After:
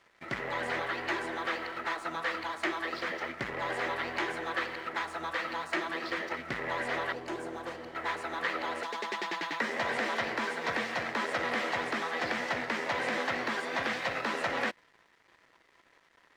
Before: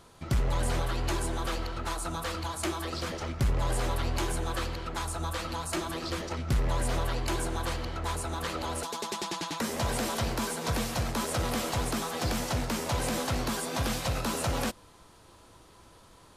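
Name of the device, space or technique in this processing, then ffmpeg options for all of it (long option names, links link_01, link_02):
pocket radio on a weak battery: -filter_complex "[0:a]asettb=1/sr,asplit=3[link_01][link_02][link_03];[link_01]atrim=end=7.124[link_04];[link_02]atrim=start=7.12:end=7.95,asetpts=PTS-STARTPTS,afade=type=in:duration=0.004:curve=qsin,afade=type=out:start_time=0.826:duration=0.004:curve=qsin,equalizer=frequency=1000:width_type=o:width=1:gain=-4,equalizer=frequency=2000:width_type=o:width=1:gain=-11,equalizer=frequency=4000:width_type=o:width=1:gain=-7[link_05];[link_03]atrim=start=7.946[link_06];[link_04][link_05]acrossfade=duration=0.004:curve1=hsin:curve2=qsin[link_07];[link_07][link_06]acrossfade=duration=0.004:curve1=qsin:curve2=hsin,highpass=310,lowpass=3500,aeval=exprs='sgn(val(0))*max(abs(val(0))-0.00126,0)':channel_layout=same,equalizer=frequency=1900:width_type=o:width=0.5:gain=12"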